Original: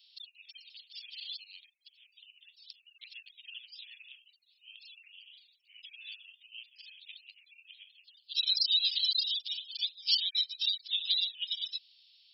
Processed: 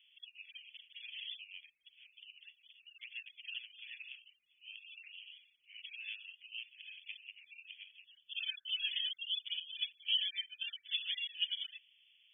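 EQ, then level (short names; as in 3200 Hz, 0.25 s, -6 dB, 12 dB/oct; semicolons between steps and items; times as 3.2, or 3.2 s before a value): dynamic EQ 1800 Hz, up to +6 dB, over -56 dBFS, Q 3; brick-wall FIR low-pass 3500 Hz; fixed phaser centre 1900 Hz, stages 4; +5.5 dB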